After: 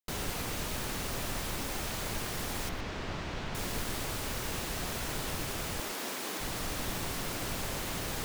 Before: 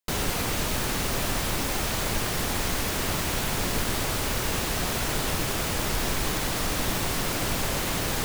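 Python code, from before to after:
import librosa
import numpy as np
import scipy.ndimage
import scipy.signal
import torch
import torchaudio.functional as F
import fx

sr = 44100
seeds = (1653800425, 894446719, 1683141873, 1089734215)

y = fx.air_absorb(x, sr, metres=160.0, at=(2.69, 3.55))
y = fx.highpass(y, sr, hz=220.0, slope=24, at=(5.8, 6.4))
y = y + 10.0 ** (-15.5 / 20.0) * np.pad(y, (int(116 * sr / 1000.0), 0))[:len(y)]
y = y * librosa.db_to_amplitude(-8.5)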